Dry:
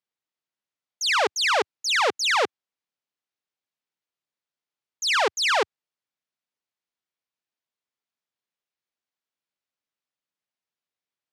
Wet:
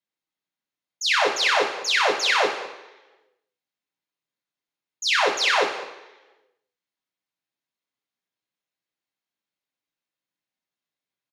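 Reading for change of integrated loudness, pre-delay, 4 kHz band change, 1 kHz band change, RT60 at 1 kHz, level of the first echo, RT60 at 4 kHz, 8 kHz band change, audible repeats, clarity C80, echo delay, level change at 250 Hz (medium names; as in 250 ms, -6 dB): +1.5 dB, 3 ms, +1.5 dB, +1.0 dB, 1.0 s, -16.5 dB, 1.0 s, -1.0 dB, 1, 9.5 dB, 202 ms, +2.5 dB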